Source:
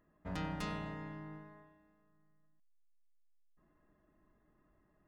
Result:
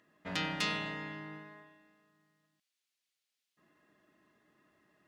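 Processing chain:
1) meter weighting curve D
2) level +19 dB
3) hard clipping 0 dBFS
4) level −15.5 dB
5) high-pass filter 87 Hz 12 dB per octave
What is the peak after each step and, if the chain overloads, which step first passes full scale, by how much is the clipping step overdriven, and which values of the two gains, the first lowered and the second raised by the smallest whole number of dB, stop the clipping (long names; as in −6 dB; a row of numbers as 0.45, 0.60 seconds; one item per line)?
−21.0, −2.0, −2.0, −17.5, −17.5 dBFS
no step passes full scale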